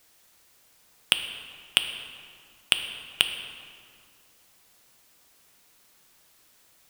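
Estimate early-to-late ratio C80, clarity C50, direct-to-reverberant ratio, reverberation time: 9.0 dB, 8.0 dB, 6.5 dB, 2.2 s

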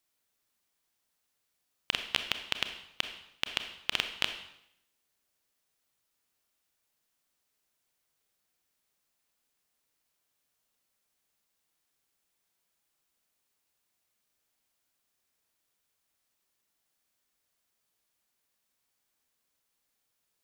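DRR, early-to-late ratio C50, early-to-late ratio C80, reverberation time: 7.0 dB, 8.5 dB, 11.5 dB, 0.75 s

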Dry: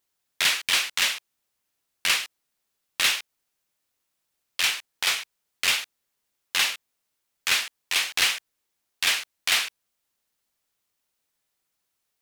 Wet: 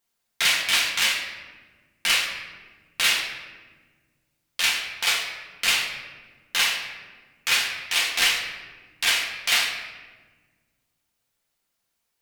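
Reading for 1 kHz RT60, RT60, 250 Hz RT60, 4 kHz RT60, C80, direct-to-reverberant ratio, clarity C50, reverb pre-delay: 1.2 s, 1.4 s, 2.2 s, 0.85 s, 6.5 dB, −1.5 dB, 5.0 dB, 4 ms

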